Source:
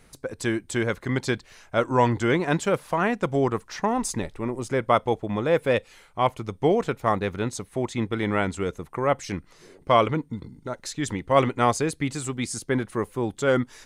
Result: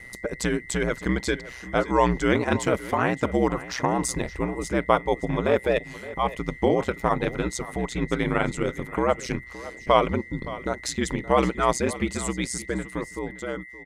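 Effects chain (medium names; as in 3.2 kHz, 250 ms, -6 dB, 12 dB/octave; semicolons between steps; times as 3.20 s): fade out at the end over 1.98 s; in parallel at +2.5 dB: compression, threshold -30 dBFS, peak gain reduction 16 dB; on the sum: whistle 2 kHz -38 dBFS; ring modulator 62 Hz; delay 569 ms -16.5 dB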